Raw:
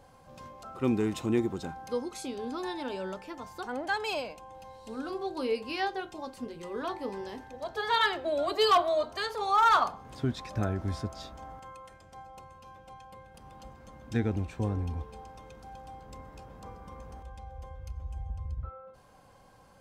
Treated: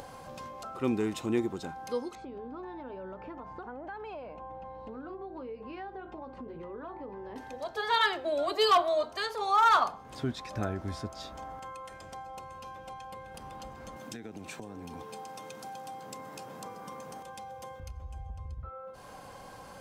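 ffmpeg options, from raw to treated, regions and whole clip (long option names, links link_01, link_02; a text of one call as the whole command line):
ffmpeg -i in.wav -filter_complex "[0:a]asettb=1/sr,asplit=3[link_01][link_02][link_03];[link_01]atrim=end=2.154[link_04];[link_02]atrim=start=2.15:end=7.36,asetpts=PTS-STARTPTS,afade=type=in:duration=0.004:curve=qsin,afade=type=out:start_time=5.206:duration=0.004:curve=qsin,lowpass=1400,acompressor=threshold=-43dB:ratio=3:attack=3.2:release=140:knee=1:detection=peak,aeval=exprs='val(0)+0.00178*(sin(2*PI*60*n/s)+sin(2*PI*2*60*n/s)/2+sin(2*PI*3*60*n/s)/3+sin(2*PI*4*60*n/s)/4+sin(2*PI*5*60*n/s)/5)':channel_layout=same[link_05];[link_03]atrim=start=7.356[link_06];[link_04][link_05]acrossfade=duration=0.004:curve1=hsin:curve2=qsin[link_07];[link_07][link_06]acrossfade=duration=0.004:curve1=qsin:curve2=hsin,asettb=1/sr,asplit=3[link_08][link_09][link_10];[link_08]atrim=end=13.964[link_11];[link_09]atrim=start=13.96:end=17.8,asetpts=PTS-STARTPTS,afade=type=in:duration=0.004:curve=qsin,afade=type=out:start_time=3.836:duration=0.004:curve=qsin,highpass=frequency=130:width=0.5412,highpass=frequency=130:width=1.3066,highshelf=frequency=4900:gain=9.5,acompressor=threshold=-39dB:ratio=12:attack=3.2:release=140:knee=1:detection=peak[link_12];[link_10]atrim=start=17.796[link_13];[link_11][link_12]acrossfade=duration=0.004:curve1=hsin:curve2=qsin[link_14];[link_14][link_13]acrossfade=duration=0.004:curve1=qsin:curve2=hsin,lowshelf=frequency=170:gain=-7,acompressor=mode=upward:threshold=-36dB:ratio=2.5" out.wav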